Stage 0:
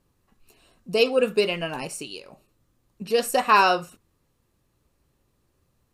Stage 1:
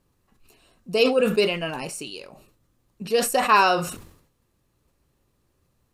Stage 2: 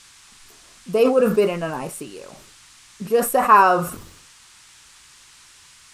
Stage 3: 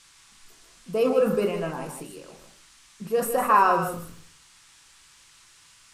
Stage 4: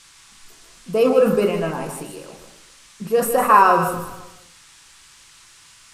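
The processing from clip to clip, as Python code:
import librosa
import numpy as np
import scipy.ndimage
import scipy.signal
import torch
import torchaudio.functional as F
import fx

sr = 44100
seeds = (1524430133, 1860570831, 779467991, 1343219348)

y1 = fx.sustainer(x, sr, db_per_s=84.0)
y2 = fx.curve_eq(y1, sr, hz=(770.0, 1200.0, 4000.0, 12000.0), db=(0, 3, -18, 2))
y2 = fx.dmg_noise_band(y2, sr, seeds[0], low_hz=930.0, high_hz=9300.0, level_db=-53.0)
y2 = y2 * librosa.db_to_amplitude(3.5)
y3 = y2 + 10.0 ** (-8.0 / 20.0) * np.pad(y2, (int(154 * sr / 1000.0), 0))[:len(y2)]
y3 = fx.room_shoebox(y3, sr, seeds[1], volume_m3=240.0, walls='furnished', distance_m=0.71)
y3 = y3 * librosa.db_to_amplitude(-7.0)
y4 = fx.echo_feedback(y3, sr, ms=259, feedback_pct=27, wet_db=-17.5)
y4 = y4 * librosa.db_to_amplitude(6.0)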